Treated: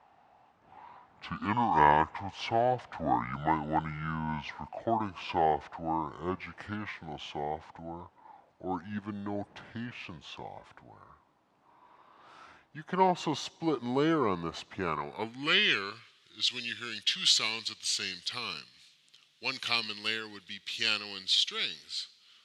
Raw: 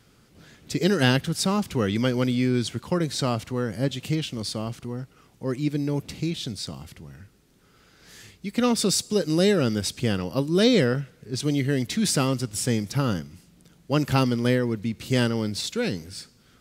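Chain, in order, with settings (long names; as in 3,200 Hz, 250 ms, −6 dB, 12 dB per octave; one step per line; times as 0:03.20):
gliding playback speed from 56% → 92%
band-pass filter sweep 810 Hz → 3,400 Hz, 0:14.76–0:15.96
level +7 dB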